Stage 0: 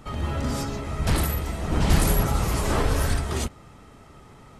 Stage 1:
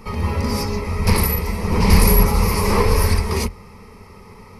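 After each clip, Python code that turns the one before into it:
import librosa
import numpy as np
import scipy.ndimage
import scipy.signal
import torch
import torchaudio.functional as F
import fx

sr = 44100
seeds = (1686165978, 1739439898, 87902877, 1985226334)

y = fx.ripple_eq(x, sr, per_octave=0.86, db=13)
y = y * librosa.db_to_amplitude(4.5)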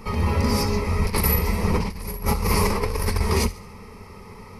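y = fx.echo_wet_highpass(x, sr, ms=70, feedback_pct=47, hz=2000.0, wet_db=-16.5)
y = fx.over_compress(y, sr, threshold_db=-18.0, ratio=-0.5)
y = y * librosa.db_to_amplitude(-2.5)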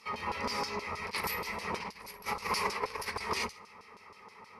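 y = fx.filter_lfo_bandpass(x, sr, shape='saw_down', hz=6.3, low_hz=850.0, high_hz=5100.0, q=1.0)
y = y * librosa.db_to_amplitude(-2.5)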